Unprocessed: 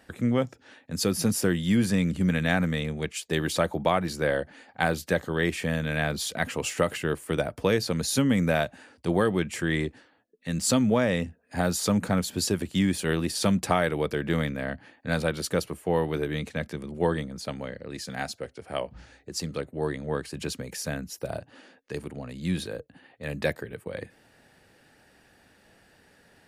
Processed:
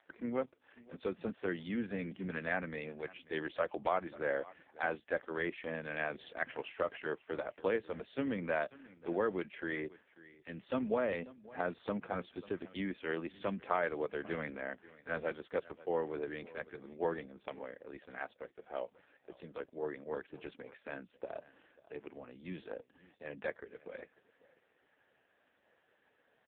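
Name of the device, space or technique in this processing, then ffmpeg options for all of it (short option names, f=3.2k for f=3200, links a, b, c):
satellite phone: -filter_complex "[0:a]asplit=3[a][b][c];[a]afade=t=out:st=0.42:d=0.02[d];[b]adynamicequalizer=threshold=0.00447:dfrequency=1700:dqfactor=0.91:tfrequency=1700:tqfactor=0.91:attack=5:release=100:ratio=0.375:range=1.5:mode=cutabove:tftype=bell,afade=t=in:st=0.42:d=0.02,afade=t=out:st=1.21:d=0.02[e];[c]afade=t=in:st=1.21:d=0.02[f];[d][e][f]amix=inputs=3:normalize=0,highpass=320,lowpass=3.1k,aecho=1:1:541:0.1,volume=-7dB" -ar 8000 -c:a libopencore_amrnb -b:a 4750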